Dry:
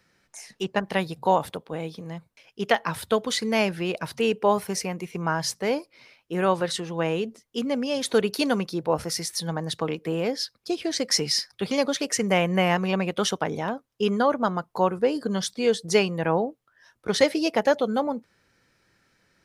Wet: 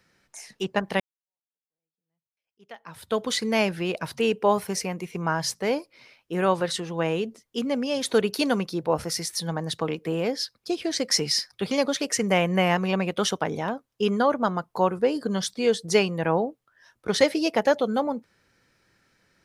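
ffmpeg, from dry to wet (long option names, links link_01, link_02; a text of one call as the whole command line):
ffmpeg -i in.wav -filter_complex "[0:a]asplit=2[link_01][link_02];[link_01]atrim=end=1,asetpts=PTS-STARTPTS,afade=type=out:start_time=0.996:duration=0.004:curve=hsin[link_03];[link_02]atrim=start=1,asetpts=PTS-STARTPTS,afade=type=in:duration=2.21:curve=exp[link_04];[link_03][link_04]concat=n=2:v=0:a=1" out.wav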